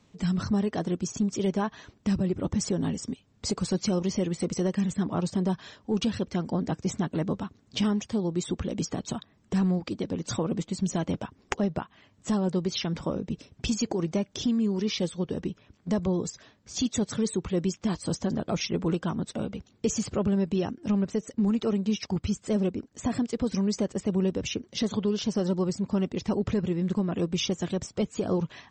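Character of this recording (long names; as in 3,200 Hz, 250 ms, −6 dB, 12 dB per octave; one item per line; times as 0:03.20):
background noise floor −63 dBFS
spectral slope −5.5 dB per octave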